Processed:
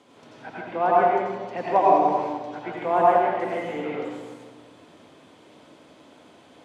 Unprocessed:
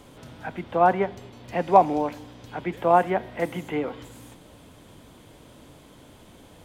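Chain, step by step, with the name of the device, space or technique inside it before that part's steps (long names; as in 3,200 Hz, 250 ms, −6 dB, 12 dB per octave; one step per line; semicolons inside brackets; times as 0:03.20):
supermarket ceiling speaker (band-pass filter 230–6,600 Hz; convolution reverb RT60 1.5 s, pre-delay 79 ms, DRR −5.5 dB)
level −5.5 dB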